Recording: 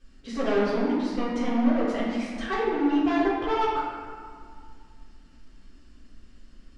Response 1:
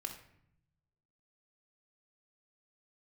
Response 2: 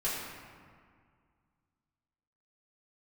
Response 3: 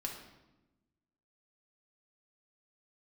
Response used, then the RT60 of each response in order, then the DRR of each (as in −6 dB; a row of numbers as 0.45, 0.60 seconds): 2; 0.70, 2.0, 1.0 seconds; 4.5, −10.0, 0.0 decibels